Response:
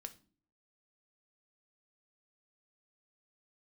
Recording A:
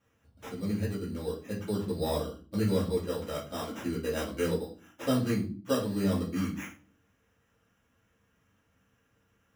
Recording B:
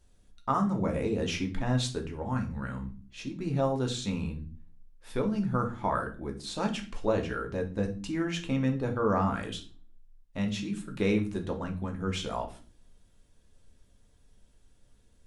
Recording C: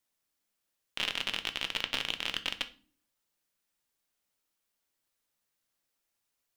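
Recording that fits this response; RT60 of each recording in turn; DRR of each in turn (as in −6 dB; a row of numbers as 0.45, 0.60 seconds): C; non-exponential decay, non-exponential decay, non-exponential decay; −7.5, 2.0, 7.5 decibels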